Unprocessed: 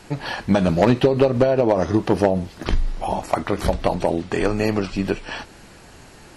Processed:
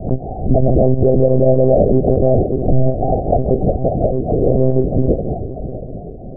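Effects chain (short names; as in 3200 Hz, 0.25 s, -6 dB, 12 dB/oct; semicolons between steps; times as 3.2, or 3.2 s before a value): regenerating reverse delay 0.322 s, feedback 65%, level -10.5 dB; 3.57–4.47 compressor 16:1, threshold -19 dBFS, peak gain reduction 7 dB; monotone LPC vocoder at 8 kHz 130 Hz; Chebyshev low-pass 750 Hz, order 8; maximiser +11 dB; backwards sustainer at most 130 dB/s; gain -1.5 dB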